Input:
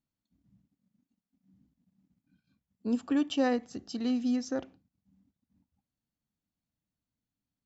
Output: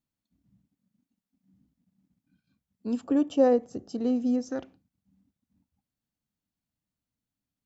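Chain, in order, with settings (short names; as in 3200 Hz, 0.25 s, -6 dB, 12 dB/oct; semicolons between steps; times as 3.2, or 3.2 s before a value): 3.04–4.51 ten-band EQ 125 Hz +5 dB, 500 Hz +10 dB, 2000 Hz -7 dB, 4000 Hz -8 dB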